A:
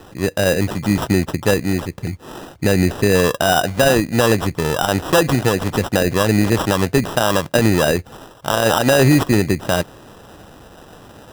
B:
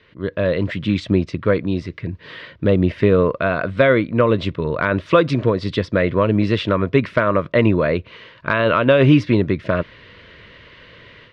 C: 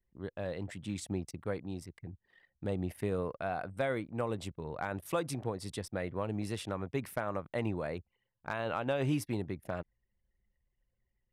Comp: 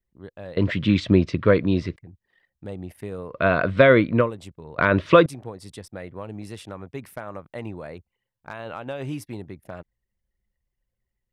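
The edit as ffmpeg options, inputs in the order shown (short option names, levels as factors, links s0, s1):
-filter_complex "[1:a]asplit=3[s0][s1][s2];[2:a]asplit=4[s3][s4][s5][s6];[s3]atrim=end=0.572[s7];[s0]atrim=start=0.568:end=1.962[s8];[s4]atrim=start=1.958:end=3.46[s9];[s1]atrim=start=3.3:end=4.31[s10];[s5]atrim=start=4.15:end=4.782[s11];[s2]atrim=start=4.778:end=5.262[s12];[s6]atrim=start=5.258[s13];[s7][s8]acrossfade=d=0.004:c1=hsin:c2=hsin[s14];[s14][s9]acrossfade=d=0.004:c1=hsin:c2=hsin[s15];[s15][s10]acrossfade=d=0.16:c1=tri:c2=tri[s16];[s16][s11]acrossfade=d=0.16:c1=tri:c2=tri[s17];[s17][s12]acrossfade=d=0.004:c1=hsin:c2=hsin[s18];[s18][s13]acrossfade=d=0.004:c1=hsin:c2=hsin"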